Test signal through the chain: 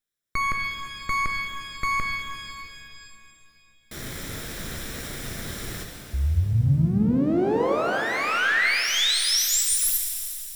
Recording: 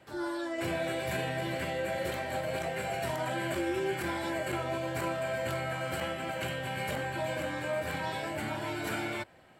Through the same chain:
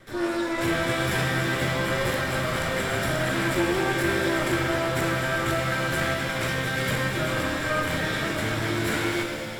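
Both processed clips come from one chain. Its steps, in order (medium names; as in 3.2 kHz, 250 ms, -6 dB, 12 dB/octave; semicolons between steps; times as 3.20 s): comb filter that takes the minimum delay 0.54 ms; pitch-shifted reverb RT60 2.7 s, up +7 st, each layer -8 dB, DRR 2 dB; trim +7.5 dB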